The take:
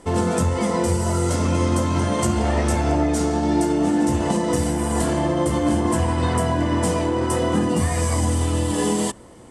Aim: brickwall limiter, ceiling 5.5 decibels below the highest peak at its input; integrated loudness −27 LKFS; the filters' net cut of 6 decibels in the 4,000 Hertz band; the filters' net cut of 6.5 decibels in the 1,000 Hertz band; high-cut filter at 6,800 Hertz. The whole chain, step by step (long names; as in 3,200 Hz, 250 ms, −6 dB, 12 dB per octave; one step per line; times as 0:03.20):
low-pass filter 6,800 Hz
parametric band 1,000 Hz −8 dB
parametric band 4,000 Hz −7.5 dB
level −3 dB
brickwall limiter −17.5 dBFS